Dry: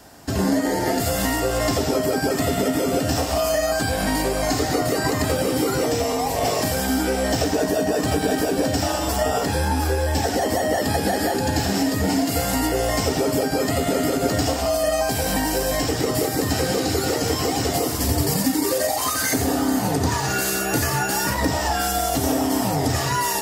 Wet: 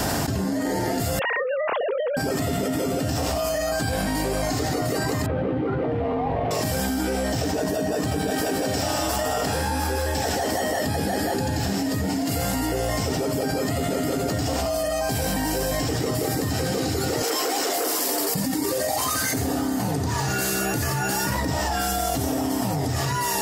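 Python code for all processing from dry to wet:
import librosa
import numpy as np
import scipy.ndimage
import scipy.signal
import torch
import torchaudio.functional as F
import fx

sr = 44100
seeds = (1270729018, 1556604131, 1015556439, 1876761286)

y = fx.chain(x, sr, fx.sine_speech(),
    fx.over_compress(threshold_db=-24.0, ratio=-0.5), at=(1.19, 2.17))
y = fx.chain(y, sr, fx.median_filter(points=9),
    fx.air_absorb(metres=430.0), at=(5.26, 6.51))
y = fx.chain(y, sr, fx.low_shelf(hz=390.0, db=-7.0),
    fx.echo_single(ms=158, db=-5.5), at=(8.3, 10.85))
y = fx.chain(y, sr, fx.highpass(hz=350.0, slope=24),
    fx.high_shelf(hz=11000.0, db=5.5),
    fx.transformer_sat(knee_hz=1500.0), at=(17.22, 18.35))
y = fx.peak_eq(y, sr, hz=130.0, db=5.0, octaves=1.5)
y = fx.env_flatten(y, sr, amount_pct=100)
y = y * 10.0 ** (-9.0 / 20.0)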